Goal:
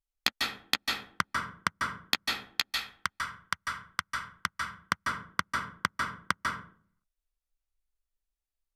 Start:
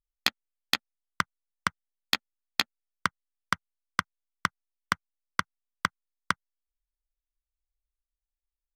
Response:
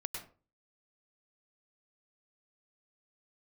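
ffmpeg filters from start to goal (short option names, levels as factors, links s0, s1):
-filter_complex "[0:a]asettb=1/sr,asplit=3[s0][s1][s2];[s0]atrim=end=2.154[s3];[s1]atrim=start=2.15:end=4.46,asetpts=PTS-STARTPTS,afade=t=in:d=0.004:c=qsin,afade=t=out:st=2.306:d=0.004:c=qsin,equalizer=f=300:w=0.43:g=-11.5[s4];[s2]atrim=start=4.456[s5];[s3][s4]acrossfade=d=0.004:c1=hsin:c2=qsin[s6];[s6][s5]acrossfade=d=0.004:c1=qsin:c2=hsin[s7];[1:a]atrim=start_sample=2205,asetrate=29106,aresample=44100[s8];[s7][s8]afir=irnorm=-1:irlink=0,volume=0.841"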